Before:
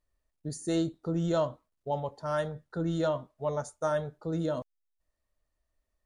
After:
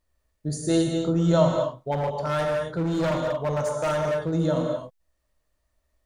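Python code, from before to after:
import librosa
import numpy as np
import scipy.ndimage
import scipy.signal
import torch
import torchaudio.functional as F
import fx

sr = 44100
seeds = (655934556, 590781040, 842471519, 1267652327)

y = fx.rev_gated(x, sr, seeds[0], gate_ms=290, shape='flat', drr_db=0.5)
y = fx.clip_hard(y, sr, threshold_db=-27.0, at=(1.91, 4.32), fade=0.02)
y = y * librosa.db_to_amplitude(5.5)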